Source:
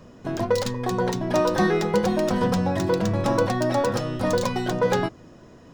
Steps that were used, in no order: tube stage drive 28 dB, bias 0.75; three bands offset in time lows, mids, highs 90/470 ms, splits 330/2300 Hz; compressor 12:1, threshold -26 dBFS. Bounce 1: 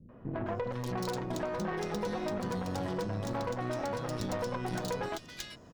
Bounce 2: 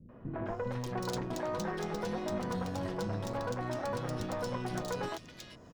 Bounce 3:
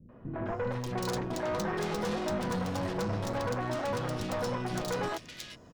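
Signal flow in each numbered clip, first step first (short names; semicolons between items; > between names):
three bands offset in time > compressor > tube stage; compressor > tube stage > three bands offset in time; tube stage > three bands offset in time > compressor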